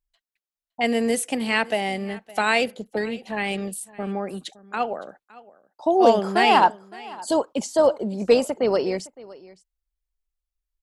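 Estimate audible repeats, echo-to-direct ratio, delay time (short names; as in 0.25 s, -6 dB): 1, -21.0 dB, 0.563 s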